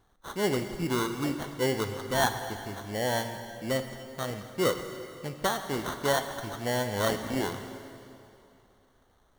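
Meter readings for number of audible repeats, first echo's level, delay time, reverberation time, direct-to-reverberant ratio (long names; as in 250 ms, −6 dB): no echo audible, no echo audible, no echo audible, 2.7 s, 7.0 dB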